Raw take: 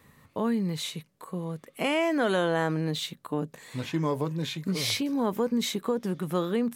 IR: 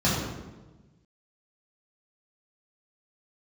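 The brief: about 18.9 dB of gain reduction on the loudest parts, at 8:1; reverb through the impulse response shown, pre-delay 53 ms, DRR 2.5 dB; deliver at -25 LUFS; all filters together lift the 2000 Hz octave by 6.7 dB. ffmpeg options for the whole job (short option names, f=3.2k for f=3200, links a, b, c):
-filter_complex "[0:a]equalizer=f=2k:t=o:g=8.5,acompressor=threshold=-40dB:ratio=8,asplit=2[a][b];[1:a]atrim=start_sample=2205,adelay=53[c];[b][c]afir=irnorm=-1:irlink=0,volume=-17.5dB[d];[a][d]amix=inputs=2:normalize=0,volume=12dB"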